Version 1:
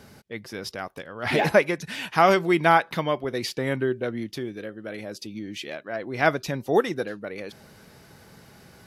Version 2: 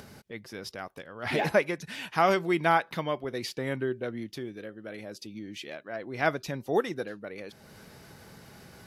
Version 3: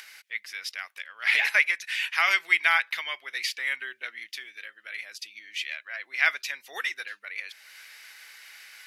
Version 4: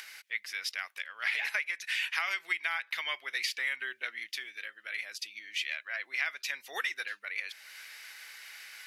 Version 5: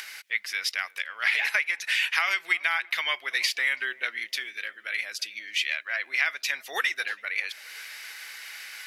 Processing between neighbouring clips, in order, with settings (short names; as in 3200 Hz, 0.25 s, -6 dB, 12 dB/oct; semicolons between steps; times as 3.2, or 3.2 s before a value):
upward compressor, threshold -37 dBFS; gain -5.5 dB
resonant high-pass 2100 Hz, resonance Q 2.6; gain +5 dB
compressor 12:1, threshold -28 dBFS, peak gain reduction 13.5 dB
darkening echo 0.33 s, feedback 54%, low-pass 930 Hz, level -19 dB; gain +7 dB